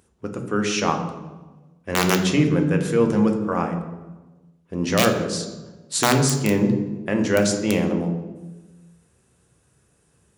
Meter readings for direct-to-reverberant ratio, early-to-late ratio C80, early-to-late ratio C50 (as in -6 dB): 4.0 dB, 9.5 dB, 7.5 dB